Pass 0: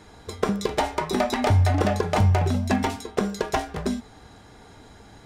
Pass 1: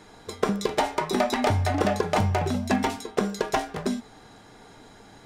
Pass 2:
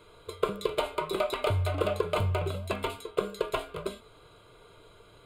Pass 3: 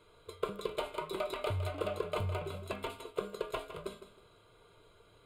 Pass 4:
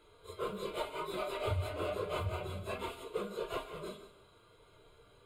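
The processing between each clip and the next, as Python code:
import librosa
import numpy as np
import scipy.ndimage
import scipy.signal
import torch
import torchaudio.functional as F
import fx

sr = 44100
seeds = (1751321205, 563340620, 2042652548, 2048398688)

y1 = fx.peak_eq(x, sr, hz=63.0, db=-14.0, octaves=1.1)
y2 = fx.fixed_phaser(y1, sr, hz=1200.0, stages=8)
y2 = y2 * 10.0 ** (-1.5 / 20.0)
y3 = fx.echo_feedback(y2, sr, ms=159, feedback_pct=29, wet_db=-11.5)
y3 = y3 * 10.0 ** (-7.5 / 20.0)
y4 = fx.phase_scramble(y3, sr, seeds[0], window_ms=100)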